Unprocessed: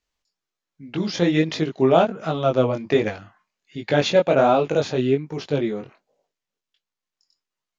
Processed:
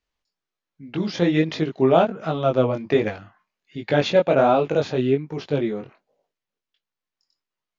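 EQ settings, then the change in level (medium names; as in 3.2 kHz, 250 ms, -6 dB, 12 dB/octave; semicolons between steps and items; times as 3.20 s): distance through air 94 m; 0.0 dB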